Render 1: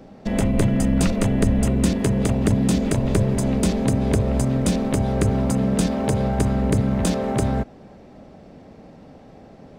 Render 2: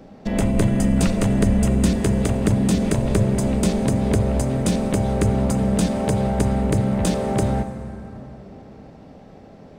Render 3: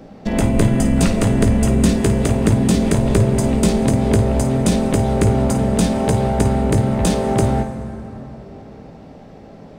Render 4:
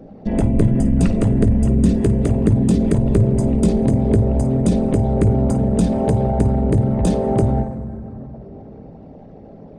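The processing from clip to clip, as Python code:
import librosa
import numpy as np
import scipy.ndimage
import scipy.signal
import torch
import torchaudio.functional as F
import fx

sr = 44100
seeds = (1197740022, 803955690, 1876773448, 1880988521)

y1 = fx.rev_plate(x, sr, seeds[0], rt60_s=3.8, hf_ratio=0.45, predelay_ms=0, drr_db=9.5)
y2 = fx.room_early_taps(y1, sr, ms=(18, 53), db=(-10.5, -11.5))
y2 = y2 * 10.0 ** (3.5 / 20.0)
y3 = fx.envelope_sharpen(y2, sr, power=1.5)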